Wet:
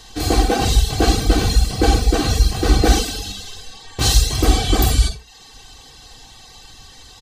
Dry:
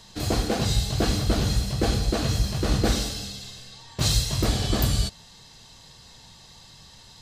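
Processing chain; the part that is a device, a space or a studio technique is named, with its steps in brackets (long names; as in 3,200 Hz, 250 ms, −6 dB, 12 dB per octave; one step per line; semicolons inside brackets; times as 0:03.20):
microphone above a desk (comb filter 2.6 ms, depth 61%; convolution reverb RT60 0.40 s, pre-delay 45 ms, DRR 3 dB)
reverb reduction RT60 0.52 s
comb filter 3.9 ms, depth 33%
level +5.5 dB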